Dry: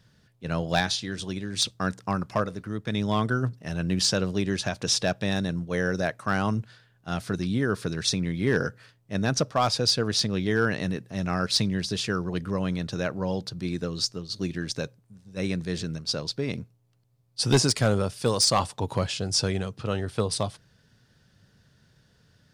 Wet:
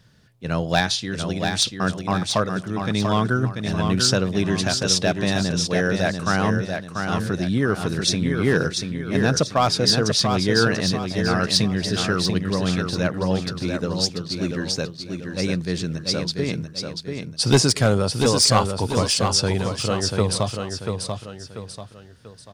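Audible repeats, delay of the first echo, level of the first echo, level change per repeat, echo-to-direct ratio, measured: 3, 689 ms, -5.5 dB, -8.0 dB, -5.0 dB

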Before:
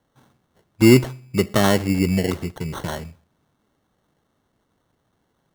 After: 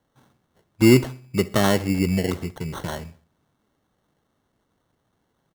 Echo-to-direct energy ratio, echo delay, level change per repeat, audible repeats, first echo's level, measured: -21.5 dB, 66 ms, -7.0 dB, 2, -22.5 dB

